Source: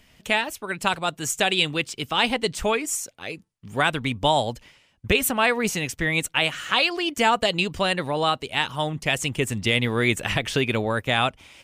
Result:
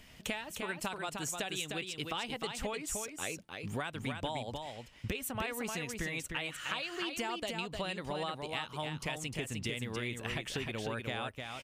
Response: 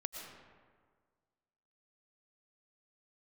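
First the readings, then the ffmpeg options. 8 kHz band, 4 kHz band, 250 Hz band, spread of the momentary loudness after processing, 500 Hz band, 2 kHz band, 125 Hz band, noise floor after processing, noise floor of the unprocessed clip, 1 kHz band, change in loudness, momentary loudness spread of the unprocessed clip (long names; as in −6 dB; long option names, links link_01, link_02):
−11.0 dB, −15.0 dB, −13.0 dB, 3 LU, −14.5 dB, −15.0 dB, −12.5 dB, −54 dBFS, −61 dBFS, −15.5 dB, −14.5 dB, 6 LU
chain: -af "acompressor=threshold=-35dB:ratio=10,aecho=1:1:305:0.562"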